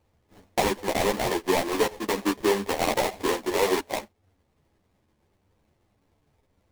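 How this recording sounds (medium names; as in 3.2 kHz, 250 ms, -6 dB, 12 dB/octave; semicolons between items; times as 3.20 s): aliases and images of a low sample rate 1.4 kHz, jitter 20%; a shimmering, thickened sound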